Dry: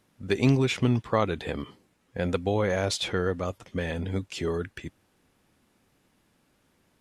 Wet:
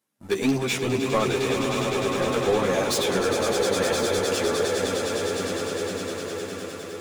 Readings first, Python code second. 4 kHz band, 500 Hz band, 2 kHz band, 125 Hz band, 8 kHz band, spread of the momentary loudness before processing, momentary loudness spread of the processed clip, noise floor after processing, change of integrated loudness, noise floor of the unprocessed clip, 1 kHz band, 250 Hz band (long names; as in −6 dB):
+7.5 dB, +7.0 dB, +6.0 dB, −3.5 dB, +12.0 dB, 14 LU, 8 LU, −37 dBFS, +3.5 dB, −69 dBFS, +7.0 dB, +2.5 dB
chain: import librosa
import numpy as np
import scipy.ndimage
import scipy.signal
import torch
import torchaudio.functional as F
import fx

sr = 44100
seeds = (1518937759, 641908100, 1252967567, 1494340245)

p1 = scipy.signal.sosfilt(scipy.signal.butter(2, 110.0, 'highpass', fs=sr, output='sos'), x)
p2 = fx.bass_treble(p1, sr, bass_db=-7, treble_db=11)
p3 = p2 + fx.echo_swell(p2, sr, ms=102, loudest=8, wet_db=-10, dry=0)
p4 = fx.leveller(p3, sr, passes=3)
p5 = fx.peak_eq(p4, sr, hz=5700.0, db=-5.5, octaves=2.3)
p6 = p5 + 10.0 ** (-12.5 / 20.0) * np.pad(p5, (int(1062 * sr / 1000.0), 0))[:len(p5)]
p7 = fx.ensemble(p6, sr)
y = F.gain(torch.from_numpy(p7), -3.0).numpy()